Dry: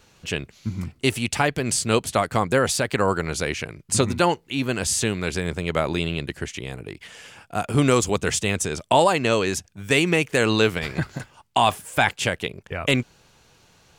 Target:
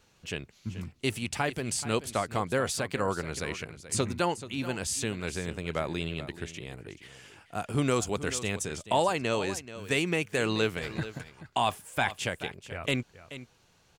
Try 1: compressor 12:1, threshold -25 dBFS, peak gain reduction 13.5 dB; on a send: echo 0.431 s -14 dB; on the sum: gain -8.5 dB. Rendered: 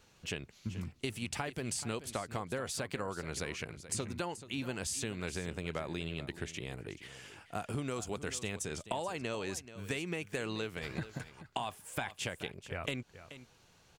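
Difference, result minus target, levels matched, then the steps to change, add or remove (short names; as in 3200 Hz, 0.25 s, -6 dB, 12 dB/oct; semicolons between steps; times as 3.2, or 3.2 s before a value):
compressor: peak gain reduction +13.5 dB
remove: compressor 12:1, threshold -25 dBFS, peak gain reduction 13.5 dB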